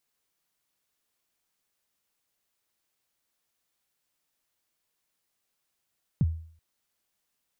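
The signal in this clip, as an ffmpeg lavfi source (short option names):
-f lavfi -i "aevalsrc='0.141*pow(10,-3*t/0.52)*sin(2*PI*(190*0.036/log(81/190)*(exp(log(81/190)*min(t,0.036)/0.036)-1)+81*max(t-0.036,0)))':d=0.38:s=44100"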